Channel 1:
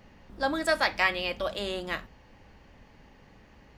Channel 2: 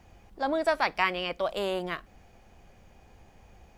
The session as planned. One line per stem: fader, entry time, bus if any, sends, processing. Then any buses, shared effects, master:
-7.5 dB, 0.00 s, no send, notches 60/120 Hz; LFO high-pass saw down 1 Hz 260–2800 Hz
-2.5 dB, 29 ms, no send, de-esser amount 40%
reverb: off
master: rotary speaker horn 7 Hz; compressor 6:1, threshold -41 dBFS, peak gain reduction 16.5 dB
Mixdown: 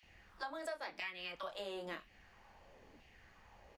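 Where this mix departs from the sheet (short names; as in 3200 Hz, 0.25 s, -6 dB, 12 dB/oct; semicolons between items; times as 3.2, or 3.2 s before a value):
stem 2 -2.5 dB -> -11.0 dB; master: missing rotary speaker horn 7 Hz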